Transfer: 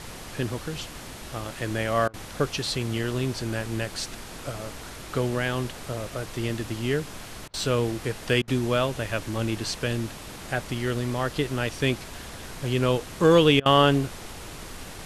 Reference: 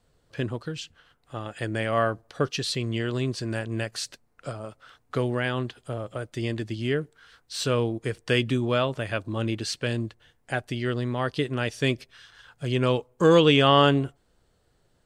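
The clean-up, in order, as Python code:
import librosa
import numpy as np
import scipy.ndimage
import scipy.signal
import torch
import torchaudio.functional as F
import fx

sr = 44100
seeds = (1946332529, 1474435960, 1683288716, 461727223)

y = fx.fix_interpolate(x, sr, at_s=(2.08, 7.48, 8.42, 13.6), length_ms=56.0)
y = fx.noise_reduce(y, sr, print_start_s=7.04, print_end_s=7.54, reduce_db=26.0)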